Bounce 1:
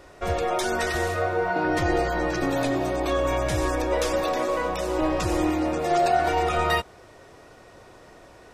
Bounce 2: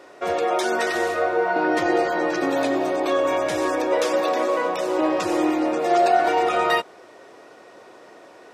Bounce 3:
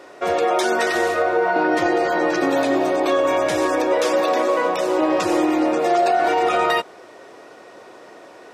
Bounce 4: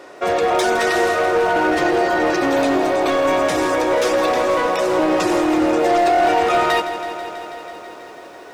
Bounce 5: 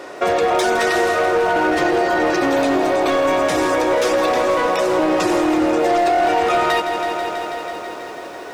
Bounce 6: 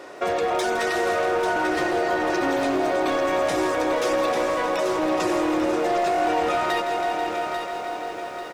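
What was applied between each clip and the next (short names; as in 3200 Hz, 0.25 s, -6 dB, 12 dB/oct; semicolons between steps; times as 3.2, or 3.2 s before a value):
Chebyshev high-pass 320 Hz, order 2; high shelf 6700 Hz -6.5 dB; gain +4 dB
maximiser +12 dB; gain -8.5 dB
overloaded stage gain 15.5 dB; lo-fi delay 0.163 s, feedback 80%, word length 9-bit, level -12 dB; gain +2.5 dB
compressor 2.5:1, threshold -23 dBFS, peak gain reduction 7.5 dB; gain +6 dB
feedback echo 0.842 s, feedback 43%, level -7.5 dB; gain -6.5 dB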